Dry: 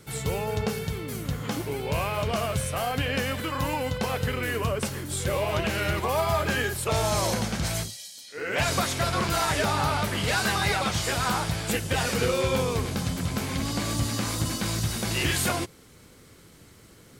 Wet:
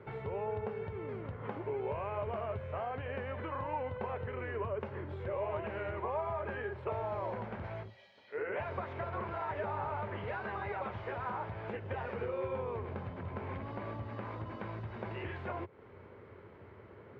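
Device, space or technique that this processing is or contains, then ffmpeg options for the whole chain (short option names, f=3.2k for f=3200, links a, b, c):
bass amplifier: -af "acompressor=threshold=-37dB:ratio=5,highpass=88,equalizer=f=92:t=q:w=4:g=8,equalizer=f=160:t=q:w=4:g=-7,equalizer=f=280:t=q:w=4:g=-5,equalizer=f=400:t=q:w=4:g=8,equalizer=f=590:t=q:w=4:g=6,equalizer=f=940:t=q:w=4:g=8,lowpass=f=2.2k:w=0.5412,lowpass=f=2.2k:w=1.3066,volume=-2dB"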